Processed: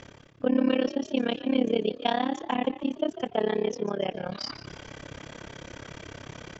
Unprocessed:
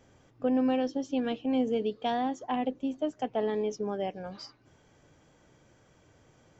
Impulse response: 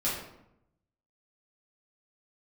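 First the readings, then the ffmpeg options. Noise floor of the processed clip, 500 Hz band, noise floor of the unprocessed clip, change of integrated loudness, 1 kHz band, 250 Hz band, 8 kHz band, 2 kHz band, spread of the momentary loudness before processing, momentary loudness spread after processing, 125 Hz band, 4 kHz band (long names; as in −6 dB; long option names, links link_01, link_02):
−51 dBFS, +3.0 dB, −63 dBFS, +2.5 dB, +1.5 dB, +2.5 dB, can't be measured, +7.5 dB, 8 LU, 17 LU, +7.0 dB, +8.5 dB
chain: -filter_complex "[0:a]lowpass=3700,highshelf=frequency=2200:gain=11,bandreject=frequency=780:width=12,areverse,acompressor=mode=upward:threshold=-31dB:ratio=2.5,areverse,tremolo=f=34:d=0.974,asplit=2[link_01][link_02];[link_02]asplit=3[link_03][link_04][link_05];[link_03]adelay=145,afreqshift=53,volume=-14dB[link_06];[link_04]adelay=290,afreqshift=106,volume=-23.6dB[link_07];[link_05]adelay=435,afreqshift=159,volume=-33.3dB[link_08];[link_06][link_07][link_08]amix=inputs=3:normalize=0[link_09];[link_01][link_09]amix=inputs=2:normalize=0,volume=6.5dB"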